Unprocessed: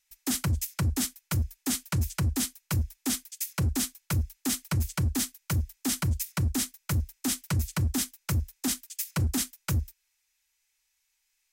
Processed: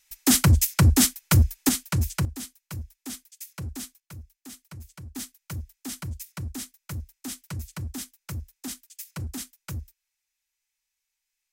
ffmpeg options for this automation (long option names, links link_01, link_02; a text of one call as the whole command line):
ffmpeg -i in.wav -af "asetnsamples=nb_out_samples=441:pad=0,asendcmd='1.69 volume volume 3dB;2.25 volume volume -8dB;4 volume volume -15dB;5.16 volume volume -7dB',volume=10dB" out.wav